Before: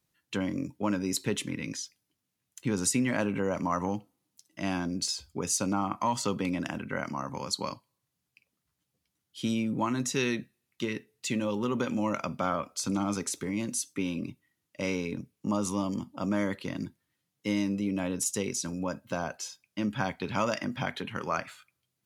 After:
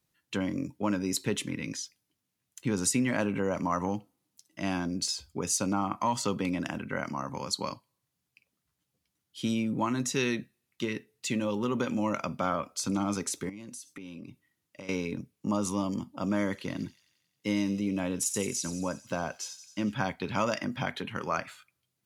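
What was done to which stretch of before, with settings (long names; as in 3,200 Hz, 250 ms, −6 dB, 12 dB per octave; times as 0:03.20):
0:13.49–0:14.89: downward compressor 8 to 1, threshold −40 dBFS
0:16.07–0:19.94: delay with a high-pass on its return 90 ms, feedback 62%, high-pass 4,000 Hz, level −9 dB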